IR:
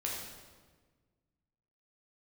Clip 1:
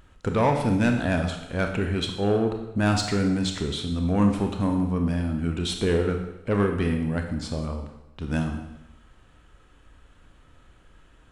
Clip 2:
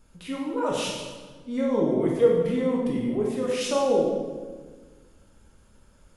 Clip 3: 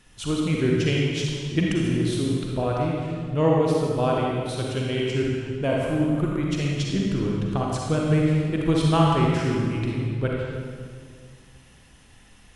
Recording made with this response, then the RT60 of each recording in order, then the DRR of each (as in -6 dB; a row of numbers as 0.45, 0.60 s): 2; 0.95, 1.5, 2.0 s; 4.0, -3.5, -3.0 dB